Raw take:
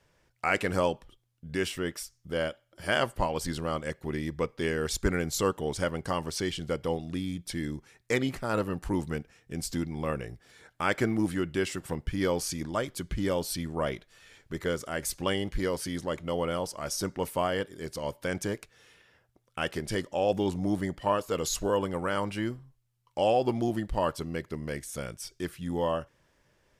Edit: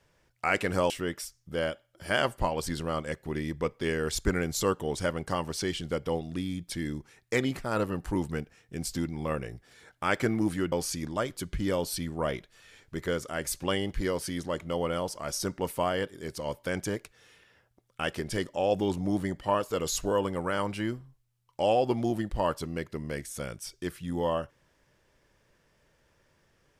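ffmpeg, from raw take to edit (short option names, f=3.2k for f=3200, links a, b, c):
-filter_complex "[0:a]asplit=3[a][b][c];[a]atrim=end=0.902[d];[b]atrim=start=1.678:end=11.502[e];[c]atrim=start=12.298[f];[d][e]acrossfade=d=0.004:c1=hsin:c2=hsin[g];[g][f]acrossfade=d=0.004:c1=hsin:c2=hsin"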